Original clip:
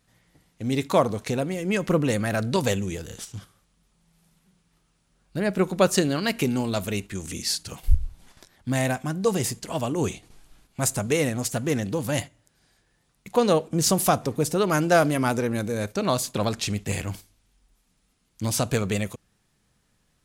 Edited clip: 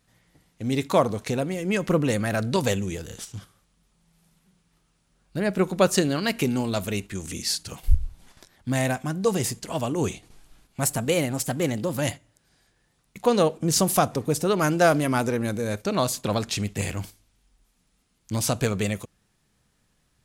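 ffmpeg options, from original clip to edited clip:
-filter_complex "[0:a]asplit=3[a][b][c];[a]atrim=end=10.834[d];[b]atrim=start=10.83:end=12.09,asetpts=PTS-STARTPTS,asetrate=48069,aresample=44100[e];[c]atrim=start=12.086[f];[d][e]acrossfade=d=0.004:c1=hsin:c2=hsin[g];[g][f]acrossfade=d=0.004:c1=hsin:c2=hsin"

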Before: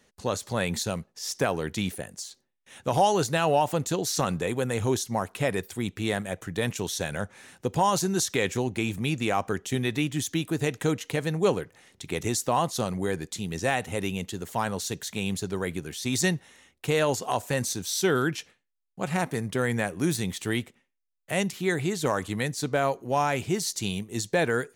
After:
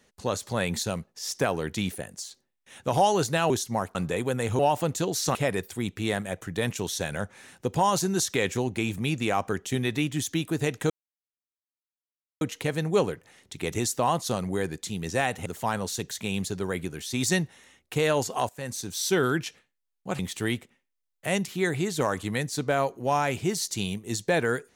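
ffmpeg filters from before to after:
-filter_complex "[0:a]asplit=9[a][b][c][d][e][f][g][h][i];[a]atrim=end=3.502[j];[b]atrim=start=4.898:end=5.352[k];[c]atrim=start=4.258:end=4.902[l];[d]atrim=start=3.498:end=4.262[m];[e]atrim=start=5.348:end=10.9,asetpts=PTS-STARTPTS,afade=t=out:st=5.548:d=0.004:c=hsin,apad=pad_dur=1.51[n];[f]atrim=start=10.9:end=13.952,asetpts=PTS-STARTPTS,afade=t=in:d=0.004:c=hsin[o];[g]atrim=start=14.378:end=17.41,asetpts=PTS-STARTPTS,afade=t=out:st=3.028:d=0.004:c=hsin:silence=0.158489[p];[h]atrim=start=17.41:end=19.112,asetpts=PTS-STARTPTS,afade=t=in:d=0.54:silence=0.158489[q];[i]atrim=start=20.238[r];[j][k]acrossfade=d=0.004:c1=hsin:c2=hsin[s];[s][l]acrossfade=d=0.004:c1=hsin:c2=hsin[t];[t][m]acrossfade=d=0.004:c1=hsin:c2=hsin[u];[n][o]concat=n=2:v=0:a=1[v];[u][v]acrossfade=d=0.004:c1=hsin:c2=hsin[w];[p][q]concat=n=2:v=0:a=1[x];[w][x]acrossfade=d=0.004:c1=hsin:c2=hsin[y];[y][r]acrossfade=d=0.004:c1=hsin:c2=hsin"

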